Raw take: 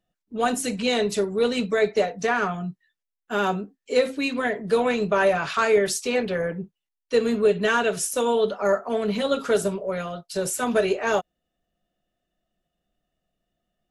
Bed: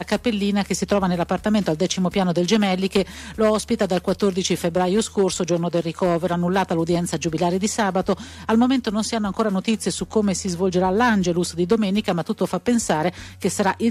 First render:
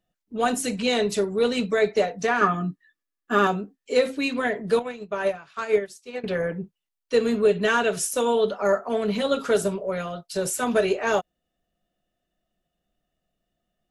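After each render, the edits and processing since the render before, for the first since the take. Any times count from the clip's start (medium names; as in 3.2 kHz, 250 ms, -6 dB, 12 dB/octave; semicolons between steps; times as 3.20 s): 2.41–3.47 s: small resonant body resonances 290/1200/1700 Hz, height 15 dB; 4.79–6.24 s: upward expansion 2.5:1, over -30 dBFS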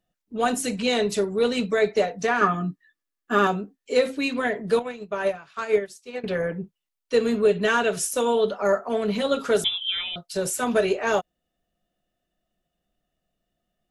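9.64–10.16 s: frequency inversion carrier 3.7 kHz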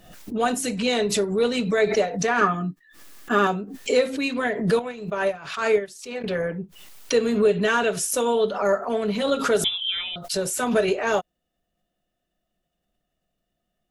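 swell ahead of each attack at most 78 dB/s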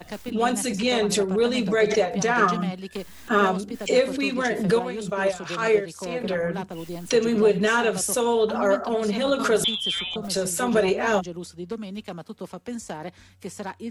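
add bed -14 dB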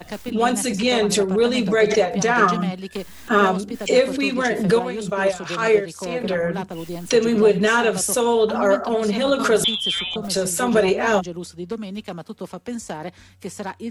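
trim +3.5 dB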